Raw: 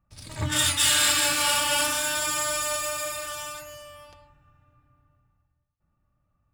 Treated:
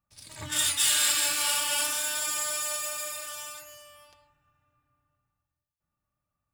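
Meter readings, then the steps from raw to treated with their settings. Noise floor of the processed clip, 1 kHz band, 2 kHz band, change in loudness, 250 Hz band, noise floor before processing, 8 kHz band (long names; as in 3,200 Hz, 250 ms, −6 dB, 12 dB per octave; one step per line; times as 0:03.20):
below −85 dBFS, −7.5 dB, −5.5 dB, −2.5 dB, −11.0 dB, −74 dBFS, −1.5 dB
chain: spectral tilt +2 dB per octave
notch filter 1,300 Hz, Q 29
level −7.5 dB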